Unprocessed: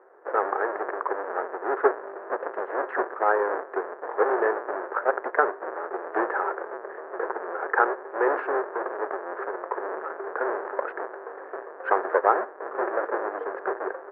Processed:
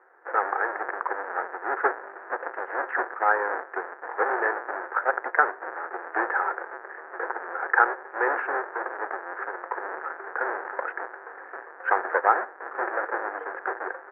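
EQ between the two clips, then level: tilt shelf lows -6.5 dB, about 840 Hz; dynamic bell 550 Hz, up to +4 dB, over -35 dBFS, Q 1.1; cabinet simulation 230–2300 Hz, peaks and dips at 420 Hz -8 dB, 610 Hz -9 dB, 1.1 kHz -6 dB; +1.5 dB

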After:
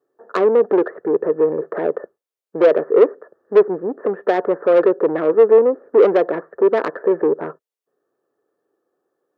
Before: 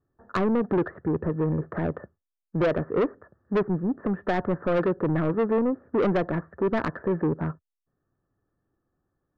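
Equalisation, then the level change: resonant high-pass 440 Hz, resonance Q 3.4; +4.0 dB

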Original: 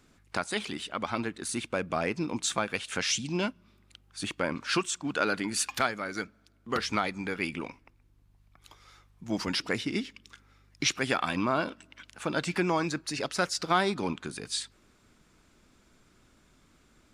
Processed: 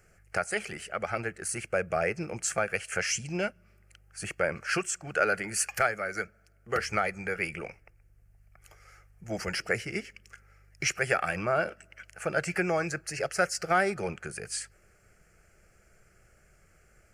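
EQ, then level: static phaser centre 1 kHz, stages 6; +4.0 dB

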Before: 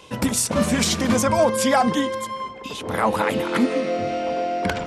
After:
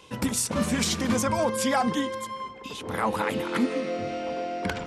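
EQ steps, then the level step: peaking EQ 640 Hz -4.5 dB 0.38 oct; -5.0 dB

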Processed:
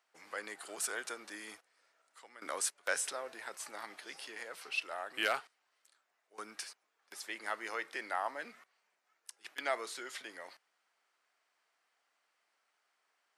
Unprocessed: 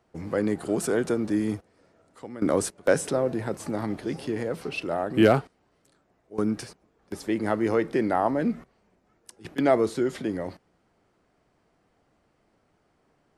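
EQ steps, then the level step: high-pass 1.4 kHz 12 dB/octave; -2.0 dB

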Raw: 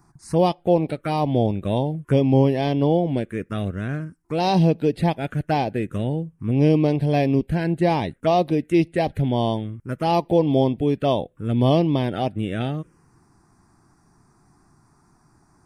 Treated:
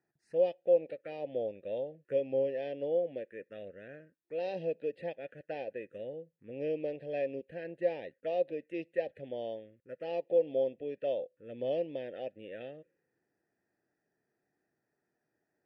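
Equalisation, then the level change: vowel filter e; -4.5 dB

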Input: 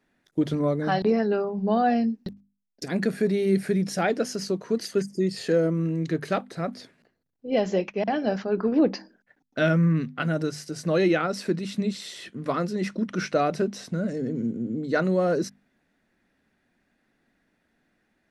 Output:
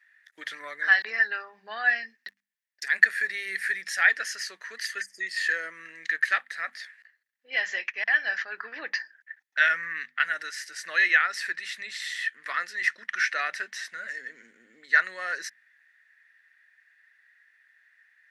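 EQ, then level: resonant high-pass 1.8 kHz, resonance Q 9.8; 0.0 dB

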